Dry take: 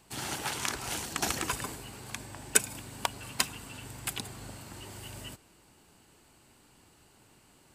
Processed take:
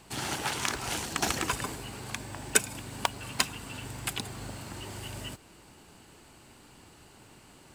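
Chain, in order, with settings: treble shelf 10 kHz -7.5 dB; modulation noise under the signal 25 dB; in parallel at -2 dB: compression, threshold -49 dBFS, peak gain reduction 27.5 dB; on the sum: trim +2 dB

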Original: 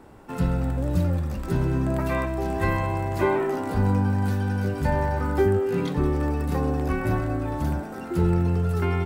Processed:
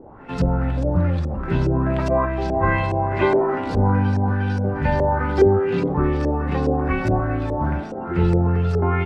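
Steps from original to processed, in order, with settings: pre-echo 90 ms -16 dB; LFO low-pass saw up 2.4 Hz 470–6100 Hz; trim +3 dB

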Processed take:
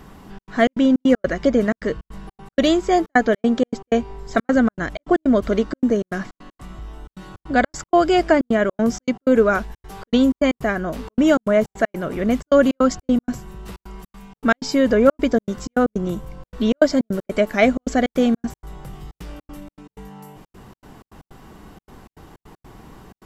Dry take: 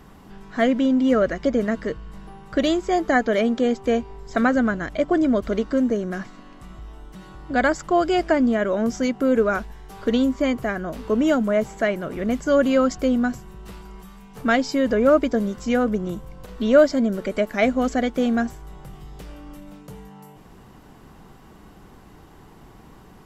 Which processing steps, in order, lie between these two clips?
trance gate "xxxx.xx.xx.x.x" 157 bpm -60 dB; trim +4 dB

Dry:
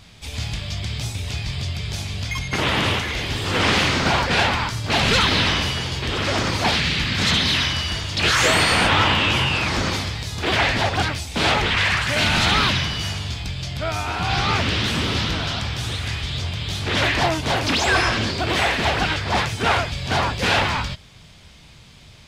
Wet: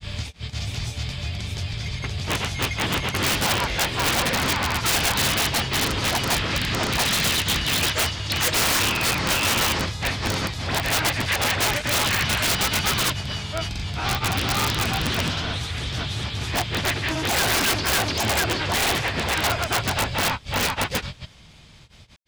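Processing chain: granulator 151 ms, grains 16 per s, spray 663 ms, pitch spread up and down by 0 st; integer overflow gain 14.5 dB

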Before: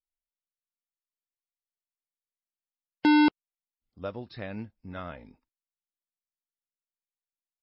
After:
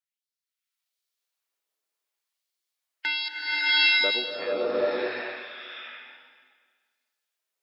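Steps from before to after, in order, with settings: LFO high-pass sine 0.67 Hz 370–4500 Hz; swelling reverb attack 790 ms, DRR -10 dB

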